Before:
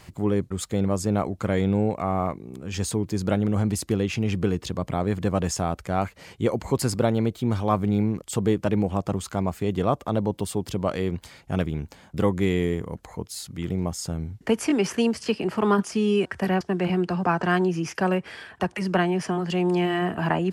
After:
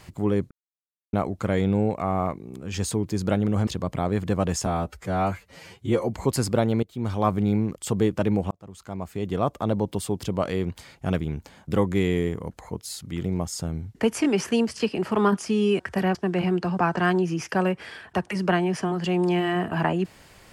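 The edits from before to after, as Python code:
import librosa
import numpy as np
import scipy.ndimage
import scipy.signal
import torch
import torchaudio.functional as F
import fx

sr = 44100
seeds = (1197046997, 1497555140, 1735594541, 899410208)

y = fx.edit(x, sr, fx.silence(start_s=0.51, length_s=0.62),
    fx.cut(start_s=3.67, length_s=0.95),
    fx.stretch_span(start_s=5.61, length_s=0.98, factor=1.5),
    fx.fade_in_from(start_s=7.29, length_s=0.35, floor_db=-20.5),
    fx.fade_in_span(start_s=8.97, length_s=1.09), tone=tone)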